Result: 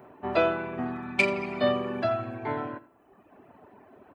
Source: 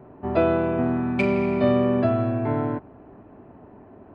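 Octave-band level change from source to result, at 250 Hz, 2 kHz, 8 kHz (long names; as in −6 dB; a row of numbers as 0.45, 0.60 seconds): −10.5 dB, +3.0 dB, can't be measured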